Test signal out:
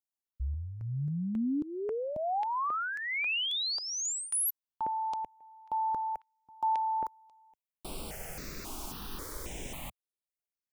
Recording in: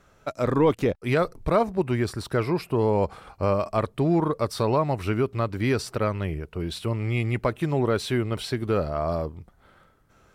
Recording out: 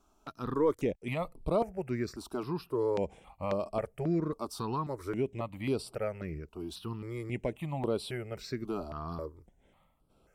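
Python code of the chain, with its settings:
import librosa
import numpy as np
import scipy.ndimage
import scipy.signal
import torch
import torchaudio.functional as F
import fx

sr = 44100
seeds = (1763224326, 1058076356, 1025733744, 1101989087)

y = fx.graphic_eq_15(x, sr, hz=(100, 1600, 4000), db=(-9, -5, -3))
y = fx.phaser_held(y, sr, hz=3.7, low_hz=510.0, high_hz=6400.0)
y = y * librosa.db_to_amplitude(-5.5)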